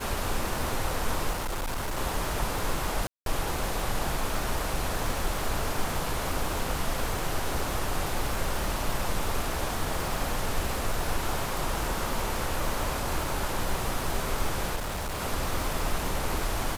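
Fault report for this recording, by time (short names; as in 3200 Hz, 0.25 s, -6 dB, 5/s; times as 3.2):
crackle 320/s -33 dBFS
1.31–1.98 clipped -27.5 dBFS
3.07–3.26 gap 0.192 s
14.75–15.2 clipped -29 dBFS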